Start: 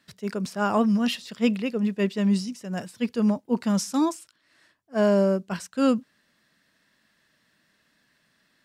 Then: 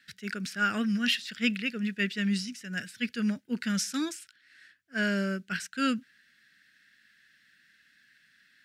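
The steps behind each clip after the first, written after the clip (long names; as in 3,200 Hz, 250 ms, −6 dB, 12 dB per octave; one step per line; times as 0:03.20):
drawn EQ curve 250 Hz 0 dB, 1,000 Hz −15 dB, 1,500 Hz +14 dB, 7,900 Hz +5 dB
level −6.5 dB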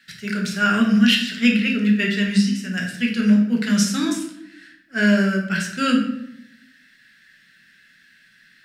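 rectangular room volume 210 cubic metres, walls mixed, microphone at 1.1 metres
level +6 dB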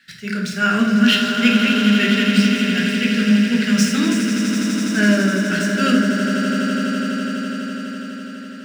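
running median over 3 samples
on a send: echo that builds up and dies away 83 ms, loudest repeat 8, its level −11.5 dB
on the sum: level +1 dB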